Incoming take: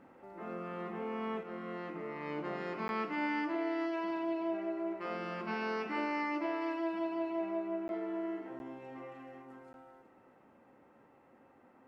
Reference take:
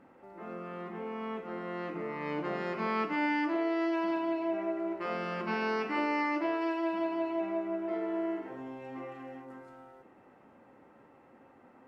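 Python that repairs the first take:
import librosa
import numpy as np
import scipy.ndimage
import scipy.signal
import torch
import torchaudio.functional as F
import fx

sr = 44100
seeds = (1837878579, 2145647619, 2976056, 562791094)

y = fx.fix_interpolate(x, sr, at_s=(2.88, 7.88, 8.59, 9.73), length_ms=11.0)
y = fx.fix_echo_inverse(y, sr, delay_ms=373, level_db=-12.5)
y = fx.fix_level(y, sr, at_s=1.43, step_db=4.5)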